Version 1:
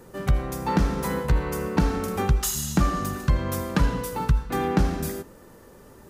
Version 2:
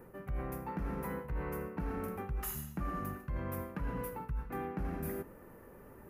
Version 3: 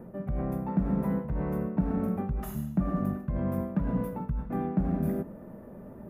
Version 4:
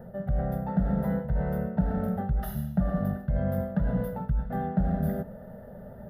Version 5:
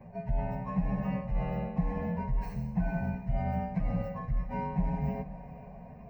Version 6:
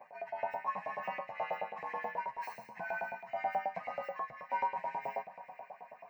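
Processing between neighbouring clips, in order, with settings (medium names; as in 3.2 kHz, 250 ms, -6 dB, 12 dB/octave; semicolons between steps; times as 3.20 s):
high-order bell 5.3 kHz -16 dB; reverse; compression 6:1, threshold -30 dBFS, peak gain reduction 14.5 dB; reverse; trim -5 dB
tilt shelf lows +5.5 dB, about 1.4 kHz; small resonant body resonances 200/620/3500 Hz, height 12 dB, ringing for 30 ms; trim -1.5 dB
static phaser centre 1.6 kHz, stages 8; trim +5.5 dB
frequency axis rescaled in octaves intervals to 116%; echo that smears into a reverb 458 ms, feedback 44%, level -15.5 dB; trim -2 dB
LFO high-pass saw up 9.3 Hz 610–2400 Hz; trim +1 dB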